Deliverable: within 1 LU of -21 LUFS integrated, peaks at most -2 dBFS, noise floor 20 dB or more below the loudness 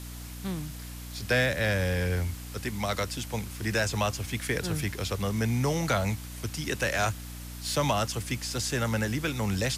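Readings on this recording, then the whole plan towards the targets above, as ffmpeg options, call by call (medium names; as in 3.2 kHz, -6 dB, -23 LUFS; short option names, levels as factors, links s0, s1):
hum 60 Hz; highest harmonic 300 Hz; hum level -38 dBFS; noise floor -40 dBFS; noise floor target -50 dBFS; loudness -29.5 LUFS; peak level -15.5 dBFS; loudness target -21.0 LUFS
-> -af "bandreject=f=60:t=h:w=6,bandreject=f=120:t=h:w=6,bandreject=f=180:t=h:w=6,bandreject=f=240:t=h:w=6,bandreject=f=300:t=h:w=6"
-af "afftdn=nr=10:nf=-40"
-af "volume=2.66"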